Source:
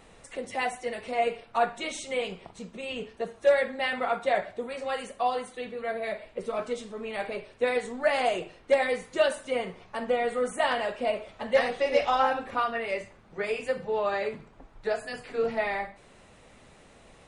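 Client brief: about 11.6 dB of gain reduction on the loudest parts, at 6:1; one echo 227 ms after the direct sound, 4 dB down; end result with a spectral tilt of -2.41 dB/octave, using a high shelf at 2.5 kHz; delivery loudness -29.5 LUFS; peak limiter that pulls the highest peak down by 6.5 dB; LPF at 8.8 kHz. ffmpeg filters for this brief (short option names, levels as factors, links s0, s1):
-af "lowpass=8800,highshelf=f=2500:g=-4.5,acompressor=threshold=0.0316:ratio=6,alimiter=level_in=1.26:limit=0.0631:level=0:latency=1,volume=0.794,aecho=1:1:227:0.631,volume=2"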